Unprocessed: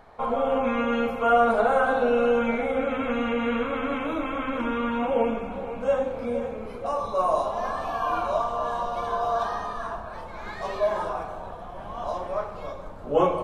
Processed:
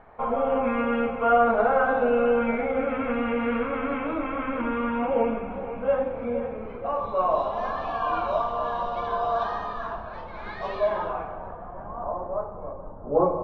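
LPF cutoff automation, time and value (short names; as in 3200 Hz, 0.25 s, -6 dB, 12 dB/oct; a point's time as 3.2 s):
LPF 24 dB/oct
6.88 s 2600 Hz
7.66 s 4300 Hz
10.84 s 4300 Hz
11.48 s 2100 Hz
12.29 s 1100 Hz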